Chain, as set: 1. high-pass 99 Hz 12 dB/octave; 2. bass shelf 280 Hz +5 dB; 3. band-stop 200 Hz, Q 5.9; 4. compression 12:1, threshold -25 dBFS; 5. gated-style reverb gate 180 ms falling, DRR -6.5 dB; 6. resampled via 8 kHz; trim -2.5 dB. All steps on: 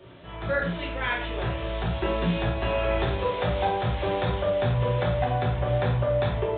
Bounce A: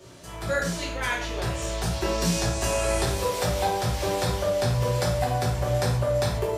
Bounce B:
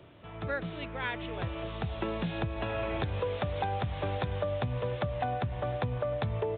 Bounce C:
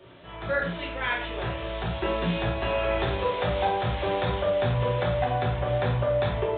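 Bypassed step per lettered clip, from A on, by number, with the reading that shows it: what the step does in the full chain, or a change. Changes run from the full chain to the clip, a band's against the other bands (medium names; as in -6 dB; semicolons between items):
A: 6, 4 kHz band +4.5 dB; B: 5, momentary loudness spread change -1 LU; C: 2, 125 Hz band -2.5 dB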